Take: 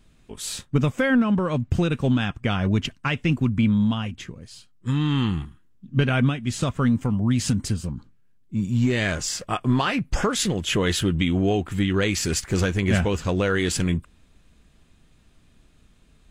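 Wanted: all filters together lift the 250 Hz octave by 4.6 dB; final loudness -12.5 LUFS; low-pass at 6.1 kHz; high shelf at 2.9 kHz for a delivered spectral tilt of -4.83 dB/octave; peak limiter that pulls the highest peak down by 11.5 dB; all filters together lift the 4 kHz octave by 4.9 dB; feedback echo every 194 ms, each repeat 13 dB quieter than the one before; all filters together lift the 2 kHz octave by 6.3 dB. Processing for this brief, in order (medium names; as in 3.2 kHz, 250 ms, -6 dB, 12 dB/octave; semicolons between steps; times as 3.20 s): low-pass 6.1 kHz; peaking EQ 250 Hz +5.5 dB; peaking EQ 2 kHz +8 dB; treble shelf 2.9 kHz -4.5 dB; peaking EQ 4 kHz +7.5 dB; peak limiter -15 dBFS; feedback delay 194 ms, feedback 22%, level -13 dB; trim +12 dB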